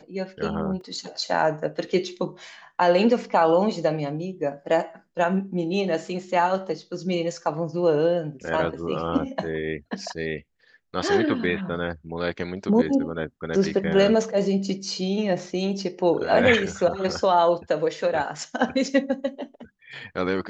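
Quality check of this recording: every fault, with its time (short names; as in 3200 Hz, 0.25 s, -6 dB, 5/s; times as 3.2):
0.81 gap 2.6 ms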